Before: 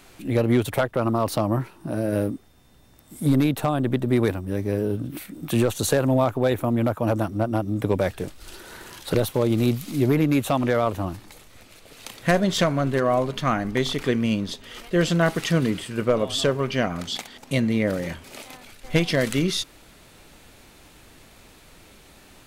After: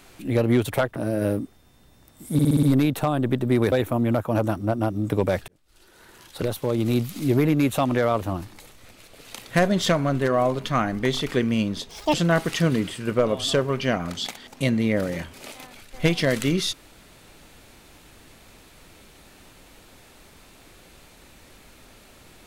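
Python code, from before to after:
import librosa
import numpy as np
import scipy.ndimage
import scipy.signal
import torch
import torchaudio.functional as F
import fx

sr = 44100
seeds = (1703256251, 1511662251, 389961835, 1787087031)

y = fx.edit(x, sr, fx.cut(start_s=0.96, length_s=0.91),
    fx.stutter(start_s=3.24, slice_s=0.06, count=6),
    fx.cut(start_s=4.33, length_s=2.11),
    fx.fade_in_span(start_s=8.2, length_s=1.68),
    fx.speed_span(start_s=14.61, length_s=0.43, speed=1.75), tone=tone)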